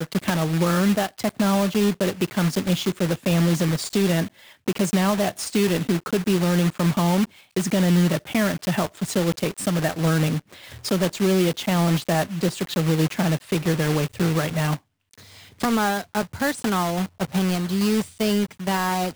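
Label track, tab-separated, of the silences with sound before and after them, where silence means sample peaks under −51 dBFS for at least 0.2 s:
14.790000	15.130000	silence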